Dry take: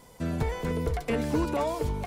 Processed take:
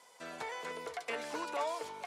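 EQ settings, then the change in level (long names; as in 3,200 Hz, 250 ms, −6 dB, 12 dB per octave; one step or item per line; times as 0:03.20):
high-pass filter 760 Hz 12 dB per octave
low-pass filter 9,100 Hz 12 dB per octave
−2.5 dB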